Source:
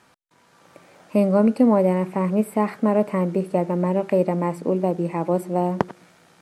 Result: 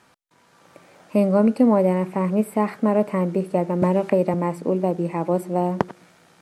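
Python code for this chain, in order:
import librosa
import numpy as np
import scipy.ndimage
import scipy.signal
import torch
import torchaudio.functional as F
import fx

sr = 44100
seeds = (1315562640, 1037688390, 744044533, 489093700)

y = fx.band_squash(x, sr, depth_pct=100, at=(3.82, 4.34))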